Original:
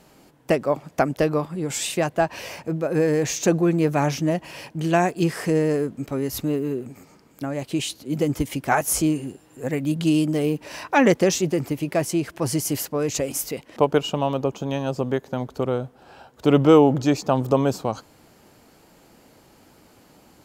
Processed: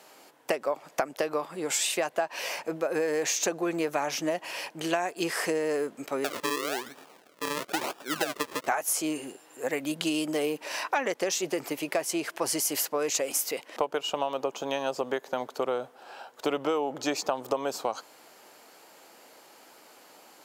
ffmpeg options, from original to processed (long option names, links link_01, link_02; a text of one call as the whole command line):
ffmpeg -i in.wav -filter_complex "[0:a]asettb=1/sr,asplit=3[link_01][link_02][link_03];[link_01]atrim=end=6.244[link_04];[link_02]atrim=start=6.24:end=8.67,asetpts=PTS-STARTPTS,afade=type=in:duration=0.004:curve=qsin,afade=type=out:start_time=2.426:duration=0.004:curve=qsin,acrusher=samples=41:mix=1:aa=0.000001:lfo=1:lforange=41:lforate=1[link_05];[link_03]atrim=start=8.666[link_06];[link_04][link_05]acrossfade=duration=0.004:curve1=hsin:curve2=qsin[link_07];[link_07][link_06]acrossfade=duration=0.004:curve1=qsin:curve2=hsin,highpass=530,acompressor=threshold=-27dB:ratio=10,volume=3dB" out.wav